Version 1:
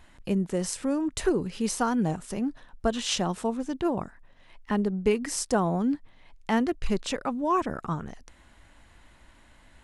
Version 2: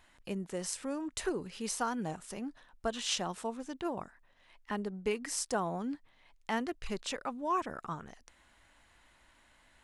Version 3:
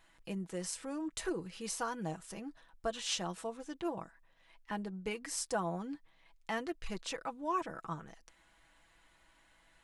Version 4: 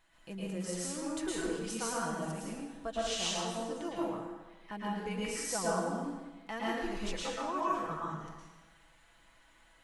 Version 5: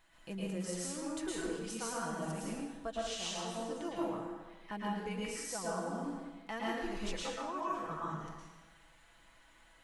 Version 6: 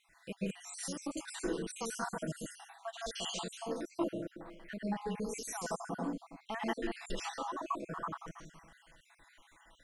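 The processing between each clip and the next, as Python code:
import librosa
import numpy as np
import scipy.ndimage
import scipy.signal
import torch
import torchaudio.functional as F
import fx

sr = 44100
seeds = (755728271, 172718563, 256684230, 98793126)

y1 = fx.low_shelf(x, sr, hz=420.0, db=-9.5)
y1 = y1 * librosa.db_to_amplitude(-4.5)
y2 = y1 + 0.53 * np.pad(y1, (int(6.1 * sr / 1000.0), 0))[:len(y1)]
y2 = y2 * librosa.db_to_amplitude(-3.5)
y3 = fx.rev_plate(y2, sr, seeds[0], rt60_s=1.2, hf_ratio=0.85, predelay_ms=100, drr_db=-6.5)
y3 = y3 * librosa.db_to_amplitude(-4.0)
y4 = fx.rider(y3, sr, range_db=4, speed_s=0.5)
y4 = y4 * librosa.db_to_amplitude(-2.5)
y5 = fx.spec_dropout(y4, sr, seeds[1], share_pct=53)
y5 = y5 * librosa.db_to_amplitude(3.0)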